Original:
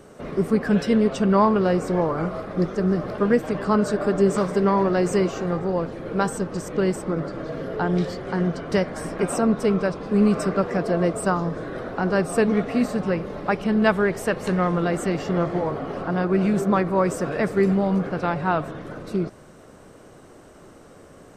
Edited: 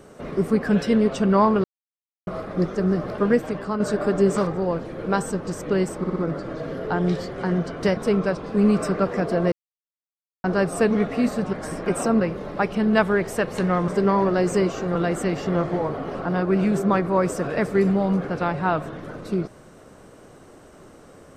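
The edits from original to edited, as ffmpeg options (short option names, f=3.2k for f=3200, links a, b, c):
-filter_complex "[0:a]asplit=15[a][b][c][d][e][f][g][h][i][j][k][l][m][n][o];[a]atrim=end=1.64,asetpts=PTS-STARTPTS,afade=t=out:st=1.636:d=0.004:c=hsin[p];[b]atrim=start=1.64:end=2.27,asetpts=PTS-STARTPTS,volume=0[q];[c]atrim=start=2.27:end=3.8,asetpts=PTS-STARTPTS,afade=t=in:d=0.004:c=hsin,afade=t=out:st=1.09:d=0.44:silence=0.375837[r];[d]atrim=start=3.8:end=4.472,asetpts=PTS-STARTPTS,afade=t=in:d=0.004:c=hsin:silence=0.375837[s];[e]atrim=start=5.538:end=7.112[t];[f]atrim=start=7.048:end=7.112[u];[g]atrim=start=7.048:end=7.112[v];[h]atrim=start=7.048:end=8.862[w];[i]atrim=start=9.538:end=11.09,asetpts=PTS-STARTPTS,afade=t=out:st=1.548:d=0.004:c=hsin[x];[j]atrim=start=11.09:end=12.01,asetpts=PTS-STARTPTS,volume=0[y];[k]atrim=start=12.01:end=13.102,asetpts=PTS-STARTPTS,afade=t=in:d=0.004:c=hsin[z];[l]atrim=start=8.858:end=9.542[aa];[m]atrim=start=13.098:end=14.772[ab];[n]atrim=start=4.468:end=5.542[ac];[o]atrim=start=14.768[ad];[p][q][r][s]concat=n=4:v=0:a=1[ae];[ae][t]acrossfade=d=0.004:c1=hsin:c2=hsin[af];[af][u]acrossfade=d=0.004:c1=hsin:c2=hsin[ag];[ag][v]acrossfade=d=0.004:c1=hsin:c2=hsin[ah];[ah][w]acrossfade=d=0.004:c1=hsin:c2=hsin[ai];[x][y][z]concat=n=3:v=0:a=1[aj];[ai][aj]acrossfade=d=0.004:c1=hsin:c2=hsin[ak];[ak][aa]acrossfade=d=0.004:c1=hsin:c2=hsin[al];[al][ab]acrossfade=d=0.004:c1=hsin:c2=hsin[am];[am][ac]acrossfade=d=0.004:c1=hsin:c2=hsin[an];[an][ad]acrossfade=d=0.004:c1=hsin:c2=hsin"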